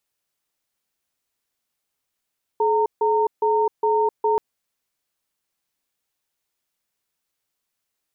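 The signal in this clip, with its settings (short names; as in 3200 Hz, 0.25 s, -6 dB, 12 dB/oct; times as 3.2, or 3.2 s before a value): cadence 428 Hz, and 918 Hz, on 0.26 s, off 0.15 s, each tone -19 dBFS 1.78 s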